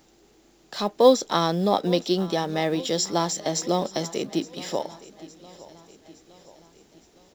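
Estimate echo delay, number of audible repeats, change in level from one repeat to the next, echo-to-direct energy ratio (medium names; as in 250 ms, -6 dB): 865 ms, 3, -5.5 dB, -17.5 dB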